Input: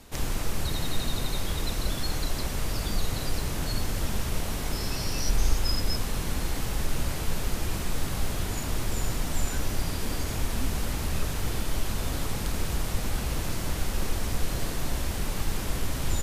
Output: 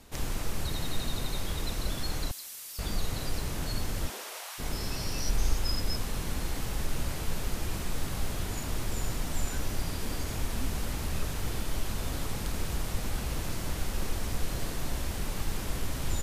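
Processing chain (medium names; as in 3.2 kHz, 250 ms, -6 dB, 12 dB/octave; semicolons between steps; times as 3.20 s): 2.31–2.79 s: differentiator; 4.08–4.58 s: high-pass 280 Hz -> 940 Hz 24 dB/octave; trim -3.5 dB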